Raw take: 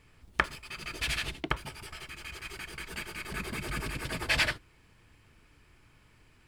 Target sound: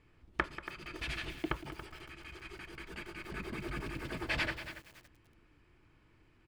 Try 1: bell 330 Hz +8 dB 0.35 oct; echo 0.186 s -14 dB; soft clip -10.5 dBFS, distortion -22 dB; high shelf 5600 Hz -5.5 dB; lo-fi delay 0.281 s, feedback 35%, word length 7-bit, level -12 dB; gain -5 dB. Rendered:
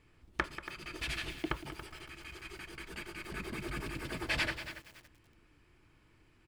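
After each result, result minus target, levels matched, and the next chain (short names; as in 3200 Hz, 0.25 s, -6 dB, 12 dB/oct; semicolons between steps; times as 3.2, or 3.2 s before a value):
soft clip: distortion +13 dB; 8000 Hz band +5.0 dB
bell 330 Hz +8 dB 0.35 oct; echo 0.186 s -14 dB; soft clip -2.5 dBFS, distortion -35 dB; high shelf 5600 Hz -5.5 dB; lo-fi delay 0.281 s, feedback 35%, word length 7-bit, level -12 dB; gain -5 dB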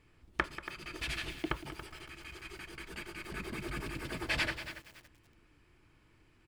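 8000 Hz band +4.5 dB
bell 330 Hz +8 dB 0.35 oct; echo 0.186 s -14 dB; soft clip -2.5 dBFS, distortion -35 dB; high shelf 5600 Hz -15.5 dB; lo-fi delay 0.281 s, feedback 35%, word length 7-bit, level -12 dB; gain -5 dB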